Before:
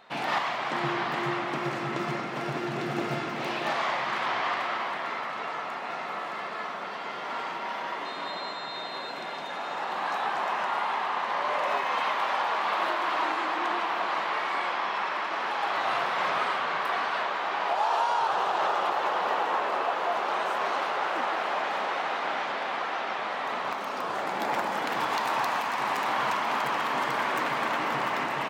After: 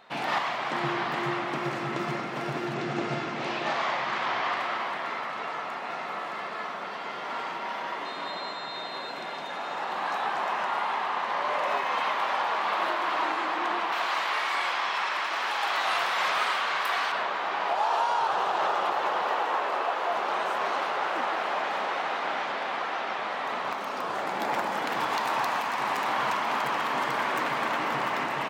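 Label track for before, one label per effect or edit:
2.740000	4.520000	low-pass filter 7,900 Hz 24 dB per octave
13.920000	17.120000	spectral tilt +3 dB per octave
19.220000	20.120000	Bessel high-pass filter 260 Hz

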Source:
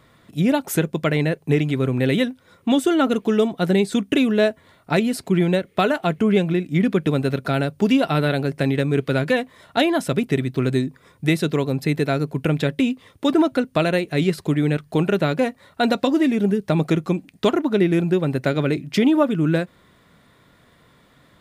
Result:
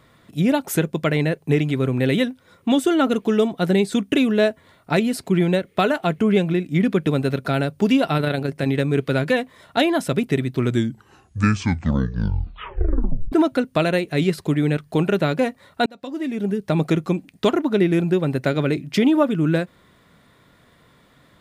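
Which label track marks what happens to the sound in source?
8.170000	8.680000	amplitude modulation modulator 28 Hz, depth 25%
10.510000	10.510000	tape stop 2.81 s
15.860000	16.810000	fade in

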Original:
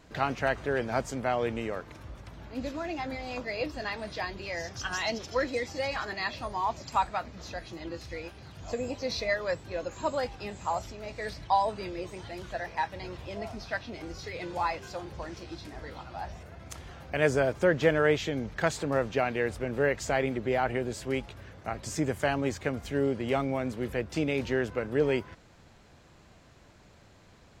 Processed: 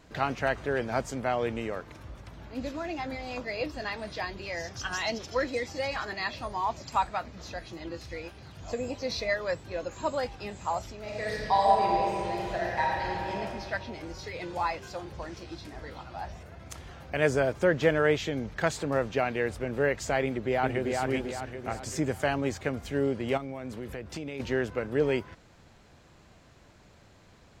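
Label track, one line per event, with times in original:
11.020000	13.340000	thrown reverb, RT60 2.6 s, DRR −3.5 dB
20.240000	21.010000	delay throw 390 ms, feedback 45%, level −3 dB
23.370000	24.400000	downward compressor, threshold −33 dBFS

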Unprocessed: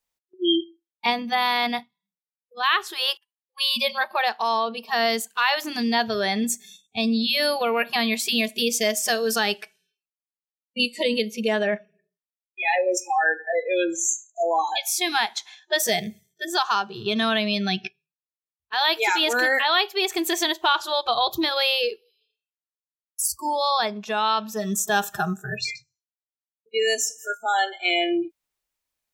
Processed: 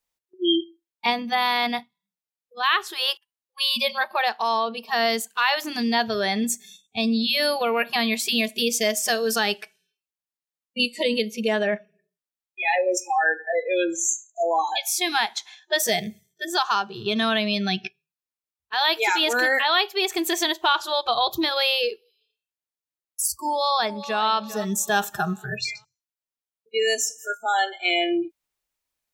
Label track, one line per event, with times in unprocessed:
23.490000	24.240000	delay throw 400 ms, feedback 40%, level −14 dB

